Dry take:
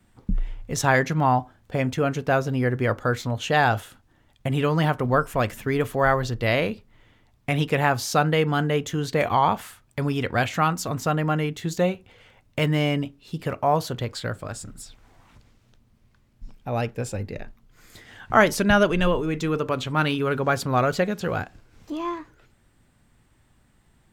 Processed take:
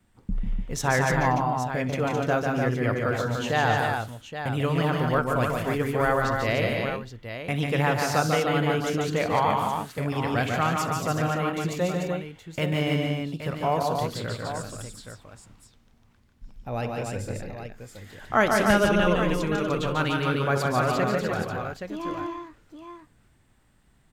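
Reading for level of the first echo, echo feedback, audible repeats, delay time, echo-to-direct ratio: -17.5 dB, no regular repeats, 5, 63 ms, 0.0 dB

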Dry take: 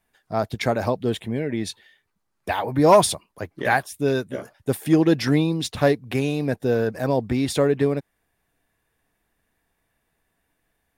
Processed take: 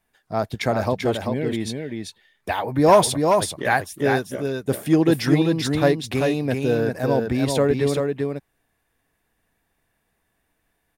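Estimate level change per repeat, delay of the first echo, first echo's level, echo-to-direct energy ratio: no regular repeats, 390 ms, -4.5 dB, -4.5 dB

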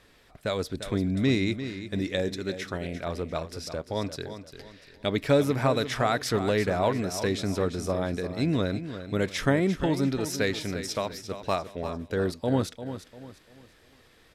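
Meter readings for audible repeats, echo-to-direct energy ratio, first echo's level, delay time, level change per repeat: 3, -10.5 dB, -11.0 dB, 347 ms, -9.0 dB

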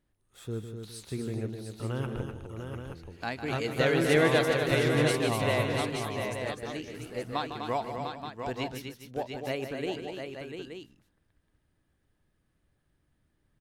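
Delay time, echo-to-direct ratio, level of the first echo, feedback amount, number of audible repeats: 153 ms, -1.5 dB, -9.5 dB, no regular repeats, 5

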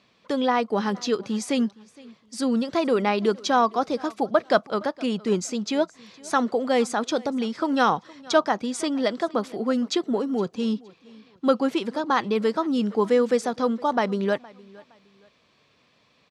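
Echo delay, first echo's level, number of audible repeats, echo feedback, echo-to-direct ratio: 465 ms, -23.0 dB, 2, 29%, -22.5 dB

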